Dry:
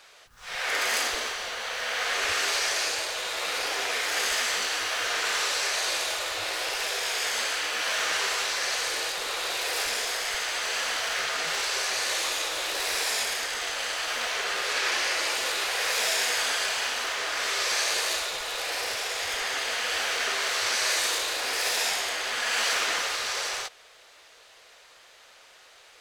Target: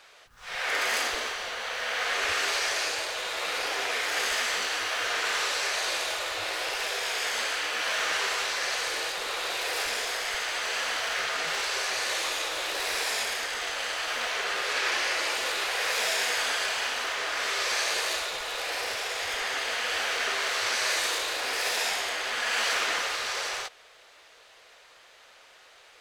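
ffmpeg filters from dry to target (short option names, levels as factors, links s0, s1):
-af "bass=f=250:g=-1,treble=f=4000:g=-4"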